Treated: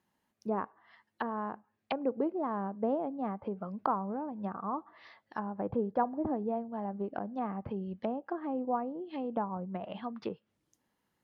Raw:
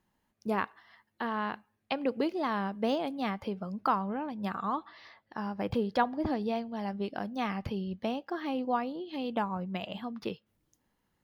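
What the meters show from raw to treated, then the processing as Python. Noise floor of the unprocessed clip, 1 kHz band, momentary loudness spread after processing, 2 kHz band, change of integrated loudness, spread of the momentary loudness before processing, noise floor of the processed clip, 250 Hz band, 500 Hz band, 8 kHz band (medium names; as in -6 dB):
-78 dBFS, -2.5 dB, 8 LU, -9.0 dB, -2.0 dB, 9 LU, -81 dBFS, -2.0 dB, -1.0 dB, no reading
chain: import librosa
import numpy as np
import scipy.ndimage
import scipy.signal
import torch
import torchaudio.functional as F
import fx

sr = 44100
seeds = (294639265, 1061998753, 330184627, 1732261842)

y = fx.highpass(x, sr, hz=150.0, slope=6)
y = fx.dynamic_eq(y, sr, hz=1200.0, q=0.79, threshold_db=-45.0, ratio=4.0, max_db=6)
y = fx.env_lowpass_down(y, sr, base_hz=670.0, full_db=-30.0)
y = y * librosa.db_to_amplitude(-1.0)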